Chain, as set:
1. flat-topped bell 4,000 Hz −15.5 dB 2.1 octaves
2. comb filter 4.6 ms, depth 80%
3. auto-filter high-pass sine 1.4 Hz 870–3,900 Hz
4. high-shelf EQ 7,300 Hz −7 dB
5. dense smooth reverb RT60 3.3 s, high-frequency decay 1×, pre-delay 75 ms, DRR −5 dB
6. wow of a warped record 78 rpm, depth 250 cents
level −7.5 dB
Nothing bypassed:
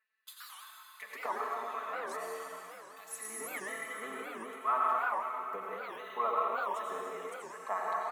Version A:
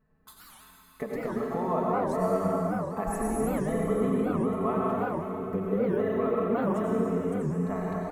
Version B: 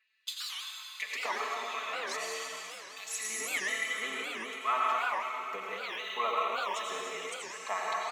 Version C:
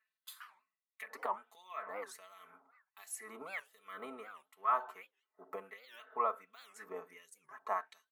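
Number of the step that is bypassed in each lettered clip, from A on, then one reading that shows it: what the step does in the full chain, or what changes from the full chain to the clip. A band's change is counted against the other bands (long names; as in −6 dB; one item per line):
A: 3, 250 Hz band +25.5 dB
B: 1, change in momentary loudness spread −8 LU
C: 5, 2 kHz band −2.0 dB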